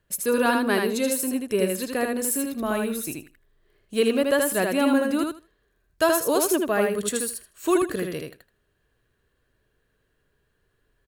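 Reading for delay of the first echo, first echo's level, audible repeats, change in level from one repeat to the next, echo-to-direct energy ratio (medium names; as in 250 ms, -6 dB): 79 ms, -3.5 dB, 2, -16.0 dB, -3.5 dB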